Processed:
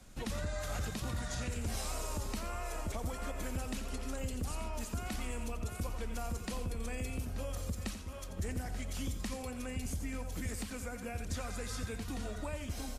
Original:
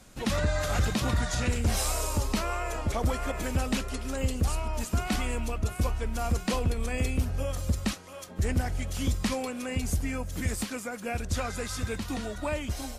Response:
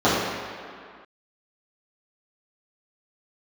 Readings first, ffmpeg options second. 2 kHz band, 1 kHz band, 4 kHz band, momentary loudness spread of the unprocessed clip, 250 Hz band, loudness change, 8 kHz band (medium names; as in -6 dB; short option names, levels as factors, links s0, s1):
-9.5 dB, -9.5 dB, -9.5 dB, 5 LU, -9.0 dB, -9.5 dB, -8.0 dB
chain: -filter_complex "[0:a]lowshelf=f=85:g=8.5,aecho=1:1:87|883:0.299|0.168,acrossover=split=130|6600[s0][s1][s2];[s0]acompressor=threshold=0.02:ratio=4[s3];[s1]acompressor=threshold=0.02:ratio=4[s4];[s2]acompressor=threshold=0.00794:ratio=4[s5];[s3][s4][s5]amix=inputs=3:normalize=0,volume=0.531"